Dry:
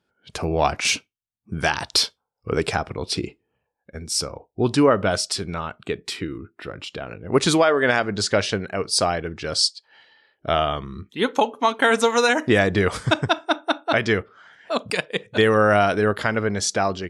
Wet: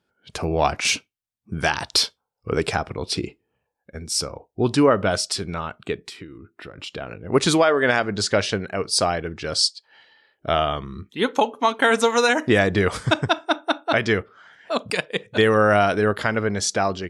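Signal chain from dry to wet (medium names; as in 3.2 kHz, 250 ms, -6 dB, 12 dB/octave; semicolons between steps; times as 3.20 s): 5.95–6.78 s: compression 6:1, threshold -36 dBFS, peak gain reduction 12 dB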